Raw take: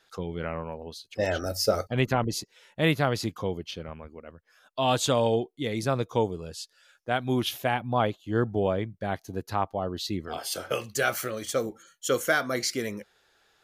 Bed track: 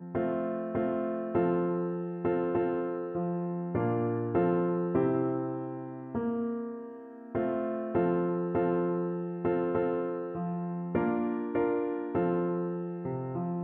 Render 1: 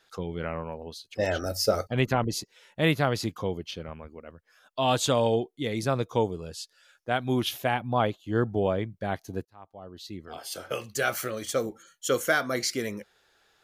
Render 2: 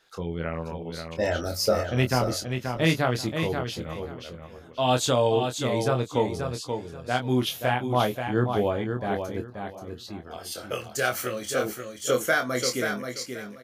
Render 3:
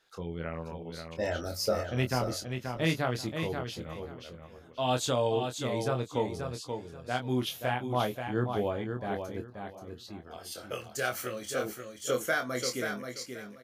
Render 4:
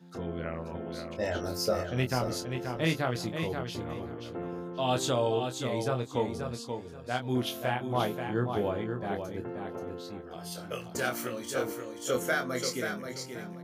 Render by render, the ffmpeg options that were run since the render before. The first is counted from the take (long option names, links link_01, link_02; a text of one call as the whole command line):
ffmpeg -i in.wav -filter_complex "[0:a]asplit=2[link_01][link_02];[link_01]atrim=end=9.45,asetpts=PTS-STARTPTS,afade=type=out:start_time=9.446:duration=0.004:curve=hsin[link_03];[link_02]atrim=start=9.45,asetpts=PTS-STARTPTS,afade=type=in:duration=1.82[link_04];[link_03][link_04]concat=n=2:v=0:a=1" out.wav
ffmpeg -i in.wav -filter_complex "[0:a]asplit=2[link_01][link_02];[link_02]adelay=24,volume=-6dB[link_03];[link_01][link_03]amix=inputs=2:normalize=0,aecho=1:1:531|1062|1593:0.473|0.104|0.0229" out.wav
ffmpeg -i in.wav -af "volume=-6dB" out.wav
ffmpeg -i in.wav -i bed.wav -filter_complex "[1:a]volume=-11dB[link_01];[0:a][link_01]amix=inputs=2:normalize=0" out.wav